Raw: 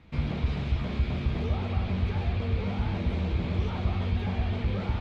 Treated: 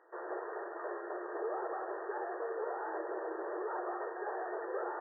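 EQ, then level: brick-wall FIR band-pass 330–1900 Hz; +1.5 dB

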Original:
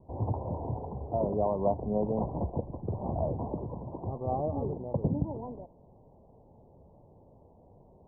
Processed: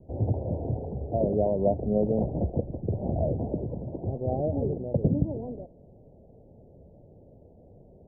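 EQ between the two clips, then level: steep low-pass 660 Hz 36 dB/oct; +5.0 dB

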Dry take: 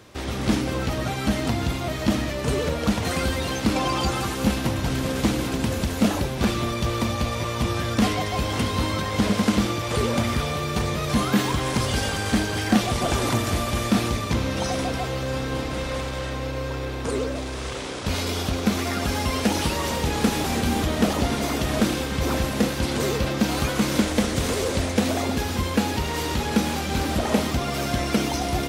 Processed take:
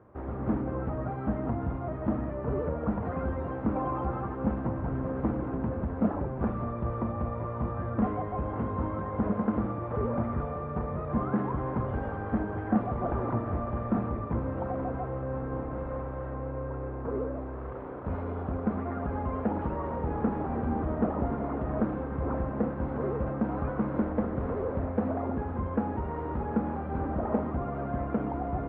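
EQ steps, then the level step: LPF 1300 Hz 24 dB/oct; air absorption 68 m; notches 50/100/150/200/250/300/350 Hz; -5.5 dB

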